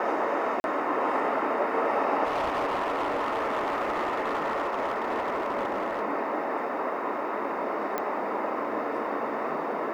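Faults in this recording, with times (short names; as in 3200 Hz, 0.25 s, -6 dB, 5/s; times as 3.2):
0.6–0.64 gap 41 ms
2.24–6.02 clipped -24 dBFS
7.98 pop -15 dBFS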